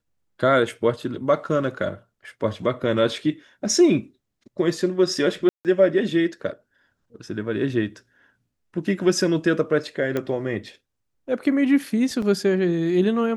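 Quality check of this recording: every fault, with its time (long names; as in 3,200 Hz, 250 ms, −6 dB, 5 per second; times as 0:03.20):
0:05.49–0:05.65: drop-out 158 ms
0:10.17: click −13 dBFS
0:12.22: drop-out 3.9 ms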